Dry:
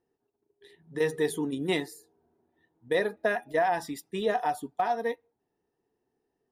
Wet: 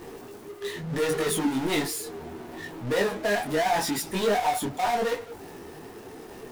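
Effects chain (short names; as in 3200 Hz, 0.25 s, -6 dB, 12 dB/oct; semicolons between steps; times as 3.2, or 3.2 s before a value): power-law curve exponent 0.35; detuned doubles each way 26 cents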